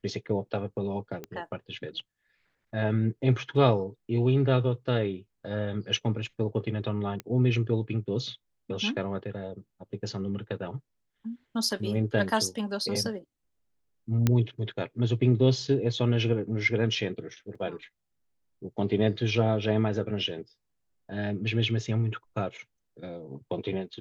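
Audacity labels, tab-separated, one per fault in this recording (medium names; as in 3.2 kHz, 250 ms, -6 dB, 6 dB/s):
1.240000	1.240000	pop -23 dBFS
7.200000	7.200000	pop -20 dBFS
14.270000	14.270000	pop -10 dBFS
17.550000	17.550000	dropout 4.3 ms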